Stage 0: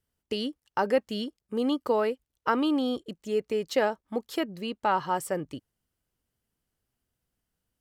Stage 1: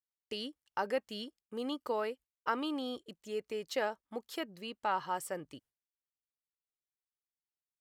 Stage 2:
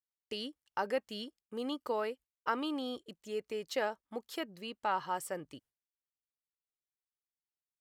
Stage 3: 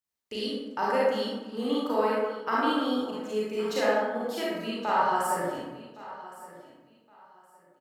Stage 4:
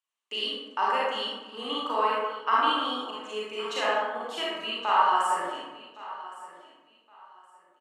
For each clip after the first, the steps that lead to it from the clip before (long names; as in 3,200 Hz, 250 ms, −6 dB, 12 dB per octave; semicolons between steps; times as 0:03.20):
noise gate with hold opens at −54 dBFS; low-shelf EQ 500 Hz −8 dB; level −5.5 dB
no processing that can be heard
repeating echo 1,116 ms, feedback 24%, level −17.5 dB; convolution reverb RT60 1.2 s, pre-delay 27 ms, DRR −7.5 dB; level +1 dB
loudspeaker in its box 440–9,600 Hz, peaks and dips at 520 Hz −6 dB, 1,100 Hz +9 dB, 2,900 Hz +10 dB, 5,000 Hz −7 dB